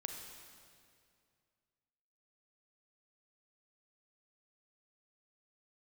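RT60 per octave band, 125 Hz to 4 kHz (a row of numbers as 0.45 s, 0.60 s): 2.7 s, 2.5 s, 2.4 s, 2.2 s, 2.1 s, 2.0 s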